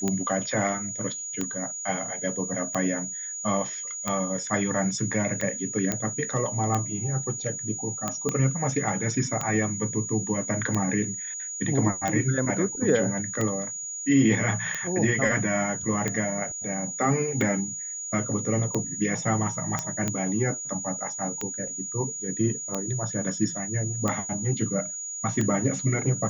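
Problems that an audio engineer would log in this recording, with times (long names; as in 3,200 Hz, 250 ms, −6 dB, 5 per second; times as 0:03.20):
scratch tick 45 rpm −13 dBFS
whistle 6,800 Hz −32 dBFS
0:05.92: click −10 dBFS
0:08.29: click −13 dBFS
0:19.79: click −12 dBFS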